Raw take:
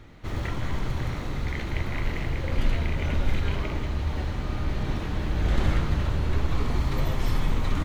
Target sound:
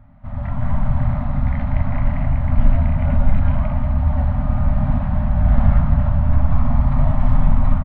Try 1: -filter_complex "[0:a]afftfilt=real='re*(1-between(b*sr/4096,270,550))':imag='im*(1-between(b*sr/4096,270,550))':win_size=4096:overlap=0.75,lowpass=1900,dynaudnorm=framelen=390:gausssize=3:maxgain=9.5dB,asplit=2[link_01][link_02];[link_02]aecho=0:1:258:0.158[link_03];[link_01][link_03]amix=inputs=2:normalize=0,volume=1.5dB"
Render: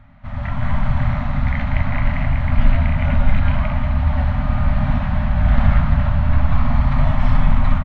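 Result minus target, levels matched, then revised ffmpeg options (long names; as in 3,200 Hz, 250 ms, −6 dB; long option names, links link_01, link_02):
2,000 Hz band +8.5 dB
-filter_complex "[0:a]afftfilt=real='re*(1-between(b*sr/4096,270,550))':imag='im*(1-between(b*sr/4096,270,550))':win_size=4096:overlap=0.75,lowpass=940,dynaudnorm=framelen=390:gausssize=3:maxgain=9.5dB,asplit=2[link_01][link_02];[link_02]aecho=0:1:258:0.158[link_03];[link_01][link_03]amix=inputs=2:normalize=0,volume=1.5dB"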